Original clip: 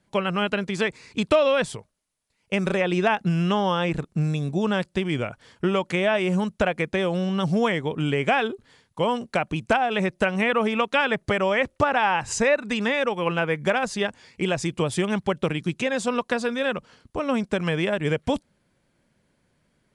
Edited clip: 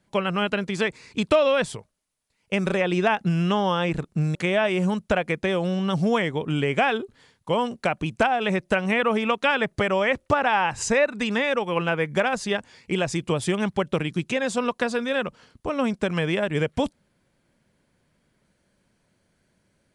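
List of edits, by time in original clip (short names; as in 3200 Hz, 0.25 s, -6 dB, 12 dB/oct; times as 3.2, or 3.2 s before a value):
4.35–5.85 cut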